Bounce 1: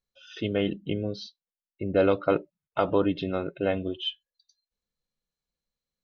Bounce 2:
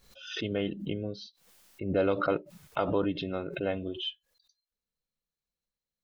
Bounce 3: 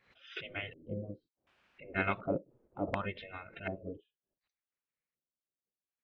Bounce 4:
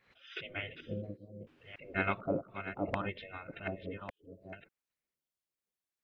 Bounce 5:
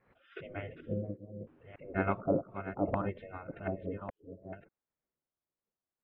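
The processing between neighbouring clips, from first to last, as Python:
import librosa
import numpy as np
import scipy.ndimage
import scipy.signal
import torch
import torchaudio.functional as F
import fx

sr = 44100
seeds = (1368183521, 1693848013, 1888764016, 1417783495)

y1 = fx.pre_swell(x, sr, db_per_s=78.0)
y1 = y1 * librosa.db_to_amplitude(-5.0)
y2 = fx.filter_lfo_lowpass(y1, sr, shape='square', hz=0.68, low_hz=440.0, high_hz=2100.0, q=4.7)
y2 = fx.spec_gate(y2, sr, threshold_db=-10, keep='weak')
y2 = fx.upward_expand(y2, sr, threshold_db=-40.0, expansion=1.5)
y2 = y2 * librosa.db_to_amplitude(1.0)
y3 = fx.reverse_delay(y2, sr, ms=586, wet_db=-9.5)
y4 = scipy.signal.sosfilt(scipy.signal.butter(2, 1100.0, 'lowpass', fs=sr, output='sos'), y3)
y4 = y4 * librosa.db_to_amplitude(4.0)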